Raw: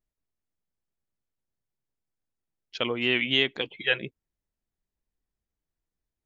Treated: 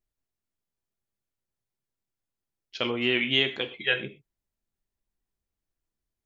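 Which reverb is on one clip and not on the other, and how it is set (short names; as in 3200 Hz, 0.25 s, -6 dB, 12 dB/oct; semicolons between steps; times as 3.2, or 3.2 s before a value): non-linear reverb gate 0.15 s falling, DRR 6.5 dB; gain -1 dB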